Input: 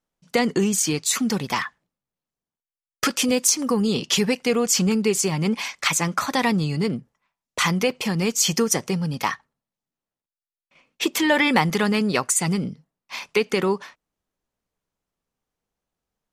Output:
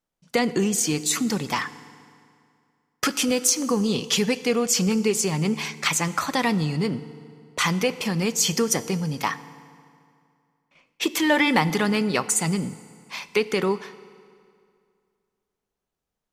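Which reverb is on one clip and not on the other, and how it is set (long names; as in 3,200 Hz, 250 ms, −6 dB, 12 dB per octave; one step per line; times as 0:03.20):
feedback delay network reverb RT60 2.3 s, low-frequency decay 1×, high-frequency decay 0.8×, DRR 14.5 dB
level −1.5 dB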